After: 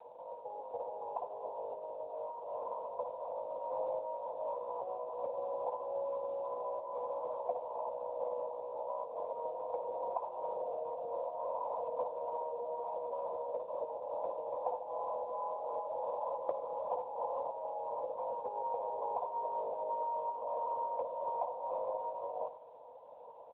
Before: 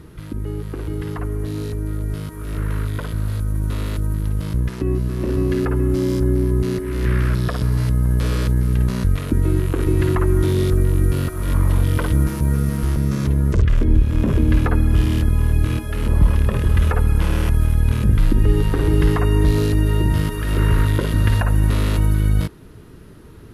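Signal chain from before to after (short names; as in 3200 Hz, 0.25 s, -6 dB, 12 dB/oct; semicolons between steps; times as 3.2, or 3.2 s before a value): Chebyshev band-pass 490–1000 Hz, order 5; compressor 4:1, threshold -42 dBFS, peak gain reduction 14 dB; 3.31–4.58 doubler 35 ms -4 dB; echo 96 ms -14 dB; gain +7.5 dB; AMR-NB 10.2 kbps 8000 Hz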